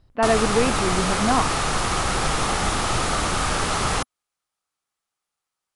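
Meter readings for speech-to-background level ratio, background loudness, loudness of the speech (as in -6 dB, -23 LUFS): -0.5 dB, -23.0 LUFS, -23.5 LUFS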